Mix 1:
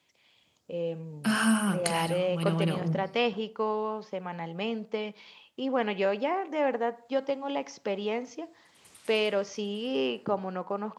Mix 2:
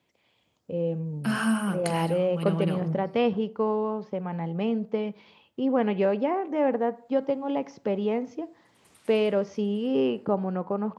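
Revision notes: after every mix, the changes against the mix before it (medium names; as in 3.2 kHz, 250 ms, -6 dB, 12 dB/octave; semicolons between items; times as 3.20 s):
first voice: add tilt EQ -3.5 dB/octave; second voice: add peaking EQ 6.8 kHz -6 dB 2.8 oct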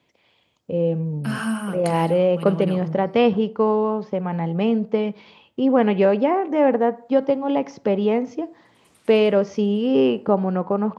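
first voice +7.0 dB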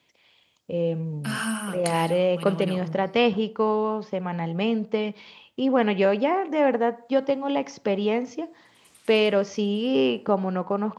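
master: add tilt shelf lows -5 dB, about 1.5 kHz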